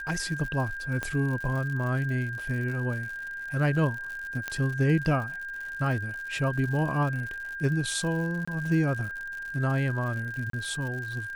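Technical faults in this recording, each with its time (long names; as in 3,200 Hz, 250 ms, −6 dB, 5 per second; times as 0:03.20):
surface crackle 110 per second −35 dBFS
whistle 1,600 Hz −34 dBFS
0:01.03: click −17 dBFS
0:04.48: click −16 dBFS
0:08.45–0:08.47: drop-out 25 ms
0:10.50–0:10.53: drop-out 33 ms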